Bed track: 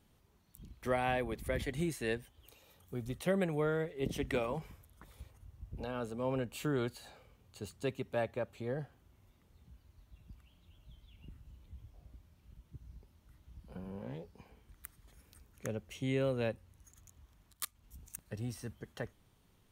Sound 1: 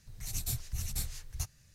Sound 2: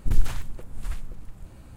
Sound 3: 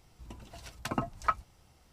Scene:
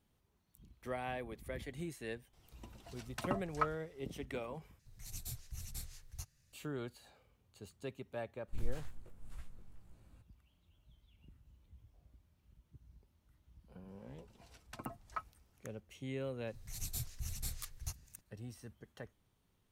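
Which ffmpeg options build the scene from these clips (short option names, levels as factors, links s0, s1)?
-filter_complex "[3:a]asplit=2[s0][s1];[1:a]asplit=2[s2][s3];[0:a]volume=0.398[s4];[2:a]flanger=delay=17:depth=2.6:speed=2.1[s5];[s4]asplit=2[s6][s7];[s6]atrim=end=4.794[s8];[s2]atrim=end=1.74,asetpts=PTS-STARTPTS,volume=0.316[s9];[s7]atrim=start=6.526[s10];[s0]atrim=end=1.92,asetpts=PTS-STARTPTS,volume=0.501,afade=t=in:d=0.004:c=hsin,afade=t=out:st=1.916:d=0.004:c=hsin,adelay=2330[s11];[s5]atrim=end=1.76,asetpts=PTS-STARTPTS,volume=0.2,afade=t=in:d=0.02,afade=t=out:st=1.74:d=0.02,adelay=8470[s12];[s1]atrim=end=1.92,asetpts=PTS-STARTPTS,volume=0.211,afade=t=in:d=0.004:c=hsin,afade=t=out:st=1.916:d=0.004:c=hsin,adelay=13880[s13];[s3]atrim=end=1.74,asetpts=PTS-STARTPTS,volume=0.501,afade=t=in:d=0.004:c=hsin,afade=t=out:st=1.736:d=0.004:c=hsin,adelay=16470[s14];[s8][s9]acrossfade=d=0.004:c1=hsin:c2=hsin[s15];[s15][s10]acrossfade=d=0.004:c1=hsin:c2=hsin[s16];[s16][s11][s12][s13][s14]amix=inputs=5:normalize=0"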